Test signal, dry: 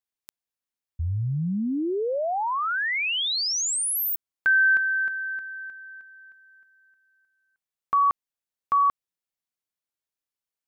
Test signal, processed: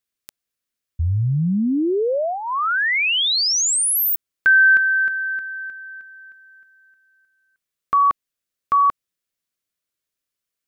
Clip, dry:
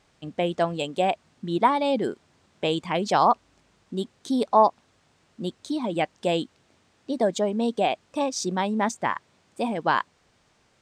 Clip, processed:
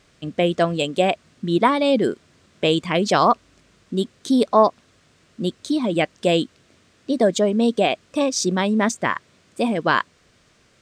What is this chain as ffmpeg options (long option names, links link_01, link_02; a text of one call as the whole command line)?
ffmpeg -i in.wav -af "equalizer=frequency=850:width=3.5:gain=-10.5,volume=7dB" out.wav